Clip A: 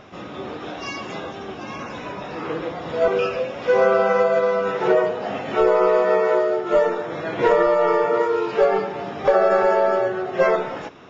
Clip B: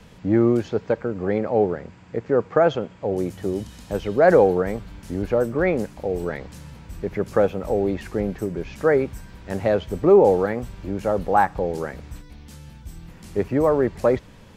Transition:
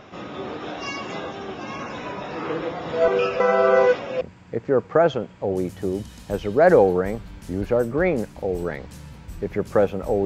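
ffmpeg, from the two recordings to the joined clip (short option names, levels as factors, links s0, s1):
-filter_complex "[0:a]apad=whole_dur=10.25,atrim=end=10.25,asplit=2[s0][s1];[s0]atrim=end=3.402[s2];[s1]atrim=start=3.398:end=4.212,asetpts=PTS-STARTPTS,areverse[s3];[1:a]atrim=start=1.818:end=7.86[s4];[s2][s3]acrossfade=d=0.004:c1=hsin:c2=hsin[s5];[s5][s4]acrossfade=d=0.004:c1=hsin:c2=hsin"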